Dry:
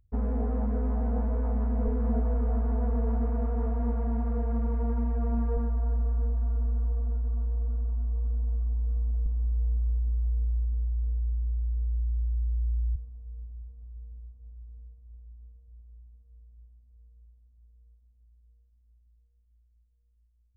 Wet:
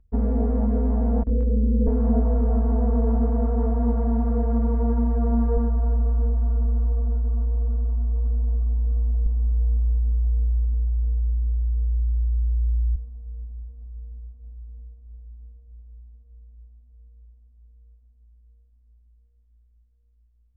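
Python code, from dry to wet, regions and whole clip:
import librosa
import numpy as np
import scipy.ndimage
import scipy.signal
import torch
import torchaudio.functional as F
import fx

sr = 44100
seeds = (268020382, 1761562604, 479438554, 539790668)

y = fx.chain(x, sr, fx.steep_lowpass(hz=540.0, slope=72),
    fx.gate_hold(open_db=-21.0, close_db=-22.0, hold_ms=71.0, range_db=-21, attack_ms=1.4, release_ms=100.0),
    fx.doubler(ms=22.0, db=-3), at=(1.23, 1.87))
y = fx.lowpass(y, sr, hz=1100.0, slope=6)
y = y + 0.65 * np.pad(y, (int(4.4 * sr / 1000.0), 0))[:len(y)]
y = F.gain(torch.from_numpy(y), 4.5).numpy()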